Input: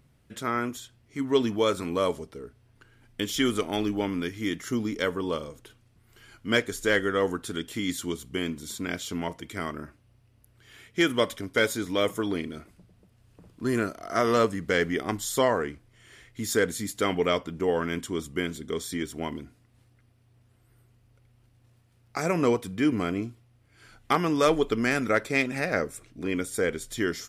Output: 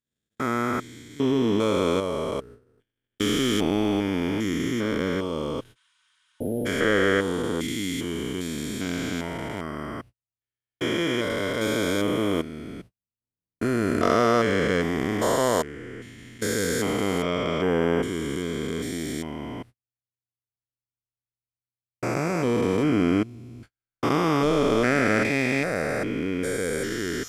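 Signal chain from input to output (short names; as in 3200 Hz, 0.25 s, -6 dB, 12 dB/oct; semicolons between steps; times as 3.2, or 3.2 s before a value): stepped spectrum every 0.4 s; gate -50 dBFS, range -47 dB; spectral repair 5.79–6.63, 900–10000 Hz before; gain +7 dB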